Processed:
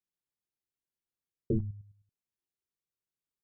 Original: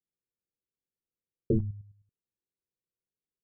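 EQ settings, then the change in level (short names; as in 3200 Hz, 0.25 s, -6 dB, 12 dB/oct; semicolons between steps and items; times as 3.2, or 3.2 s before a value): bell 490 Hz -4.5 dB 0.31 oct; -3.0 dB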